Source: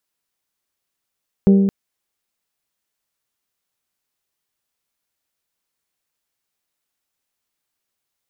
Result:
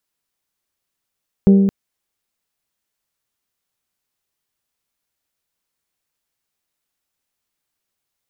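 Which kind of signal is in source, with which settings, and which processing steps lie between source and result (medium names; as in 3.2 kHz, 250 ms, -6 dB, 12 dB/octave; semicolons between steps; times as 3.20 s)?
glass hit bell, length 0.22 s, lowest mode 196 Hz, decay 1.63 s, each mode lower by 8 dB, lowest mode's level -7 dB
bass shelf 180 Hz +3.5 dB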